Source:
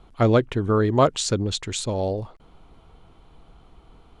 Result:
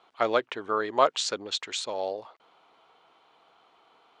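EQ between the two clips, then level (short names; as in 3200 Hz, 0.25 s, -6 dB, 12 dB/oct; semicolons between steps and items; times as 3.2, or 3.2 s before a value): HPF 670 Hz 12 dB/oct; LPF 5400 Hz 12 dB/oct; 0.0 dB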